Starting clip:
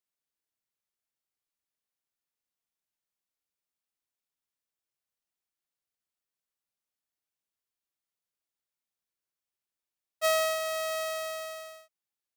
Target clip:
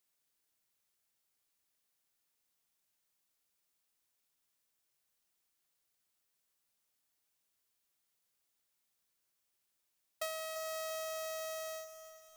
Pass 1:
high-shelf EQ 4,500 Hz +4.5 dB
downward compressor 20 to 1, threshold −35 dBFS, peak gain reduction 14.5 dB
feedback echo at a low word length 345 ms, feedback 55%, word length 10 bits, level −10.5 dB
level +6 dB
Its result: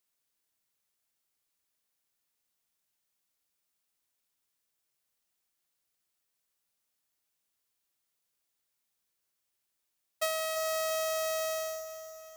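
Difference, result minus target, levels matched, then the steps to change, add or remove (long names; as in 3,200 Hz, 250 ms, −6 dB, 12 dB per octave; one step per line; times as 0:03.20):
downward compressor: peak gain reduction −8.5 dB
change: downward compressor 20 to 1, threshold −44 dBFS, peak gain reduction 23 dB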